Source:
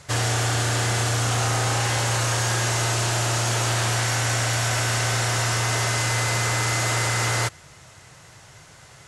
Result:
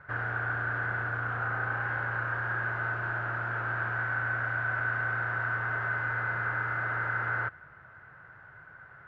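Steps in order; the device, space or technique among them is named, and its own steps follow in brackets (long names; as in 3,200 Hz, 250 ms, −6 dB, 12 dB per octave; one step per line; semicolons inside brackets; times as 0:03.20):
overdriven synthesiser ladder filter (soft clipping −24.5 dBFS, distortion −14 dB; transistor ladder low-pass 1,600 Hz, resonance 80%)
level +3 dB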